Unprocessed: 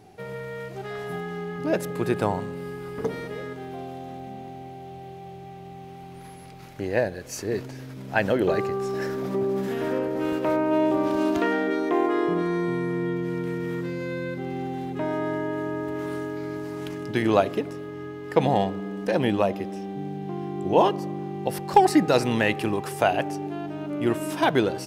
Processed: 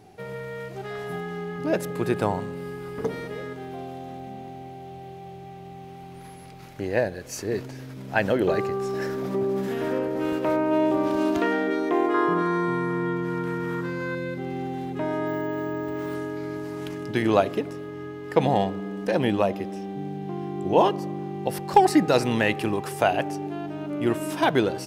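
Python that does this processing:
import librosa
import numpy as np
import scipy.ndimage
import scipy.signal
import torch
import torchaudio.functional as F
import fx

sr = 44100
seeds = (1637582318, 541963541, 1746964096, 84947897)

y = fx.band_shelf(x, sr, hz=1200.0, db=8.5, octaves=1.1, at=(12.14, 14.15))
y = fx.resample_bad(y, sr, factor=2, down='filtered', up='hold', at=(15.27, 16.15))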